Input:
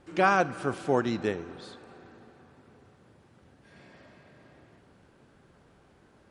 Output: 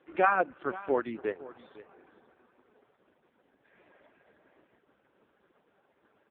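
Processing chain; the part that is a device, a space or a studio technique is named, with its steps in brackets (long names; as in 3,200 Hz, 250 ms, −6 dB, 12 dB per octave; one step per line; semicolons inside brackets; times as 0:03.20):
reverb reduction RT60 0.75 s
0:00.65–0:01.31: dynamic equaliser 760 Hz, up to −4 dB, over −42 dBFS, Q 3.1
satellite phone (band-pass filter 310–3,100 Hz; single-tap delay 512 ms −17.5 dB; AMR narrowband 4.75 kbit/s 8,000 Hz)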